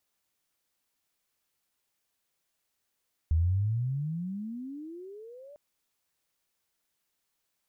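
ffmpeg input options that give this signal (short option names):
-f lavfi -i "aevalsrc='pow(10,(-21-25.5*t/2.25)/20)*sin(2*PI*76.7*2.25/(35.5*log(2)/12)*(exp(35.5*log(2)/12*t/2.25)-1))':d=2.25:s=44100"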